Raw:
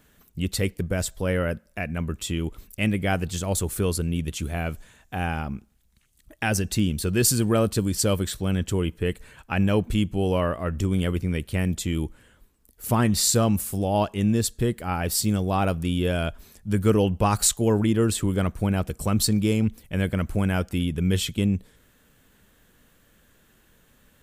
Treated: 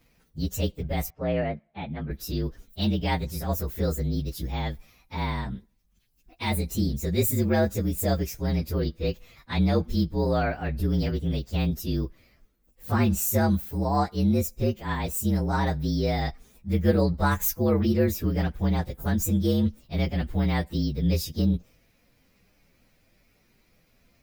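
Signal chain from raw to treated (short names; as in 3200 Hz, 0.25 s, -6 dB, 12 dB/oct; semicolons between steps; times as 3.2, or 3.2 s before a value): inharmonic rescaling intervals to 117%; 1.1–2.11 BPF 100–2100 Hz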